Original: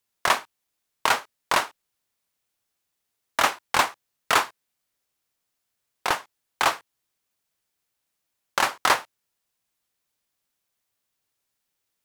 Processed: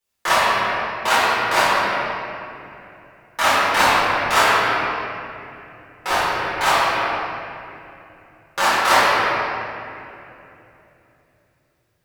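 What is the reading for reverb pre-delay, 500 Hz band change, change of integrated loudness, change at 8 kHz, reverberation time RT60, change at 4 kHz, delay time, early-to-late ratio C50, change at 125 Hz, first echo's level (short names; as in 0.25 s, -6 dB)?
6 ms, +10.5 dB, +6.5 dB, +4.0 dB, 2.9 s, +7.0 dB, none, -6.0 dB, +12.0 dB, none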